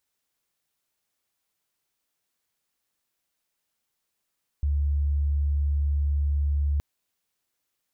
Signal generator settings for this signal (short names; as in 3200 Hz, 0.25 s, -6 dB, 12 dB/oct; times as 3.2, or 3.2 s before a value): tone sine 72 Hz -21 dBFS 2.17 s